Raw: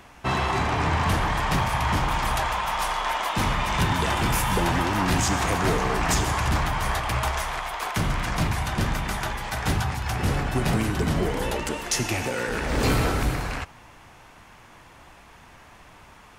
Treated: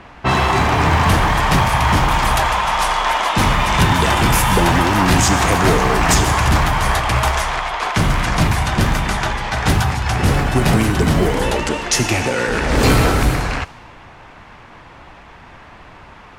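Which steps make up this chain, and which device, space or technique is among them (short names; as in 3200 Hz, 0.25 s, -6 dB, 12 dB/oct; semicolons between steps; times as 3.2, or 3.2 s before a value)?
cassette deck with a dynamic noise filter (white noise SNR 28 dB; low-pass opened by the level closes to 2400 Hz, open at -20 dBFS); gain +9 dB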